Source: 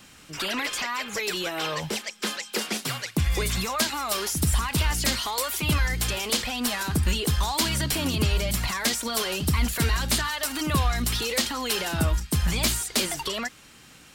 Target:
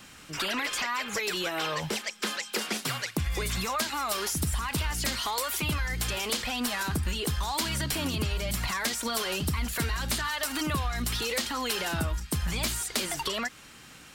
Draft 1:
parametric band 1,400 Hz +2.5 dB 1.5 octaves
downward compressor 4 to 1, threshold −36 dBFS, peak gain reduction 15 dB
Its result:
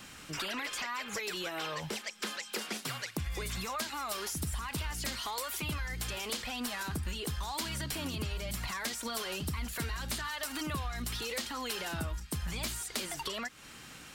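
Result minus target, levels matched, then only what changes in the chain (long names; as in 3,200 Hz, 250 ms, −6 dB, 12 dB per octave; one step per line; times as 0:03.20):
downward compressor: peak gain reduction +7 dB
change: downward compressor 4 to 1, threshold −27 dBFS, peak gain reduction 8 dB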